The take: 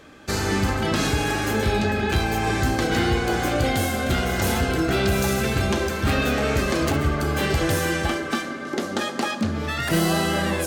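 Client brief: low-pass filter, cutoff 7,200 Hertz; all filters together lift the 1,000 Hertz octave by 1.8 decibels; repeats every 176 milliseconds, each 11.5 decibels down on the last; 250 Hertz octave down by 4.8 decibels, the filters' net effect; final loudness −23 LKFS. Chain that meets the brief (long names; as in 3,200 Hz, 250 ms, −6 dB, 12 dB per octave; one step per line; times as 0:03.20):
low-pass filter 7,200 Hz
parametric band 250 Hz −7 dB
parametric band 1,000 Hz +3 dB
repeating echo 176 ms, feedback 27%, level −11.5 dB
level +0.5 dB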